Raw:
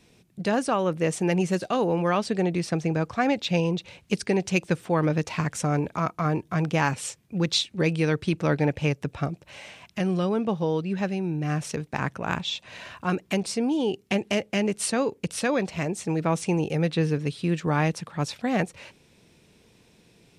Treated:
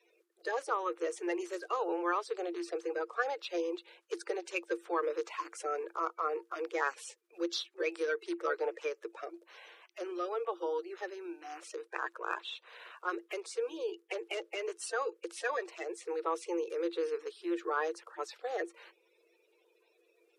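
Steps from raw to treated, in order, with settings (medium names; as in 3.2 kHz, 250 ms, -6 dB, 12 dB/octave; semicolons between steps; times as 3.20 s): coarse spectral quantiser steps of 30 dB; rippled Chebyshev high-pass 330 Hz, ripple 9 dB; trim -4 dB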